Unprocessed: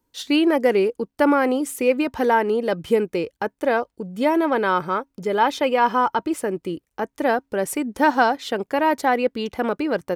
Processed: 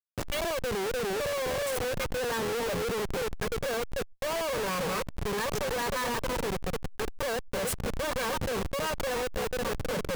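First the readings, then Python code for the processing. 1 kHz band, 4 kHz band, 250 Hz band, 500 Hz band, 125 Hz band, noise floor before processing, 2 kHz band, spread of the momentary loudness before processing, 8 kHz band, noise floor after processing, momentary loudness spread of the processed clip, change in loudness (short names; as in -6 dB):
-13.0 dB, -3.0 dB, -15.5 dB, -9.5 dB, +1.5 dB, -76 dBFS, -8.0 dB, 8 LU, +0.5 dB, -42 dBFS, 3 LU, -10.0 dB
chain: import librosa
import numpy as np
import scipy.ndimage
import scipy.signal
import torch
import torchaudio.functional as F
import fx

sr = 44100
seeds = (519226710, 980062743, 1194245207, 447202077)

y = fx.lower_of_two(x, sr, delay_ms=1.8)
y = fx.high_shelf(y, sr, hz=11000.0, db=4.0)
y = fx.echo_banded(y, sr, ms=298, feedback_pct=49, hz=540.0, wet_db=-8)
y = fx.noise_reduce_blind(y, sr, reduce_db=25)
y = y * (1.0 - 0.36 / 2.0 + 0.36 / 2.0 * np.cos(2.0 * np.pi * 9.0 * (np.arange(len(y)) / sr)))
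y = fx.leveller(y, sr, passes=1)
y = fx.level_steps(y, sr, step_db=15)
y = fx.schmitt(y, sr, flips_db=-38.0)
y = fx.pre_swell(y, sr, db_per_s=110.0)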